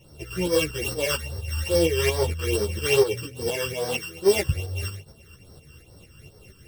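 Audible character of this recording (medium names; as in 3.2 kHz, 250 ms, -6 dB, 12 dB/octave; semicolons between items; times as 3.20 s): a buzz of ramps at a fixed pitch in blocks of 16 samples; phasing stages 12, 2.4 Hz, lowest notch 670–2600 Hz; tremolo saw up 4.3 Hz, depth 55%; a shimmering, thickened sound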